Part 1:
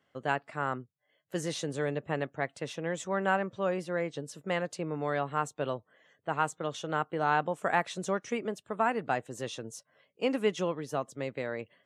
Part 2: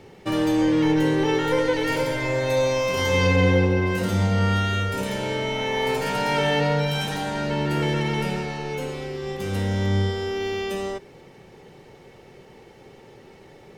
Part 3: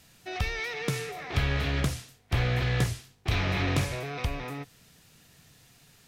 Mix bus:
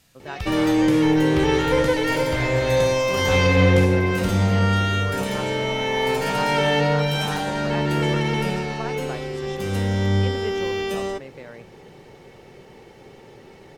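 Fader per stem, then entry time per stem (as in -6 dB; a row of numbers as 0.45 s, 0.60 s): -5.5 dB, +2.0 dB, -2.0 dB; 0.00 s, 0.20 s, 0.00 s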